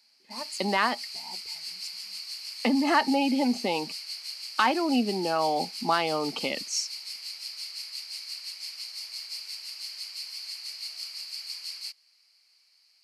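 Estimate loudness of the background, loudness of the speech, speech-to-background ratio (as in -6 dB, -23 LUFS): -36.0 LUFS, -27.0 LUFS, 9.0 dB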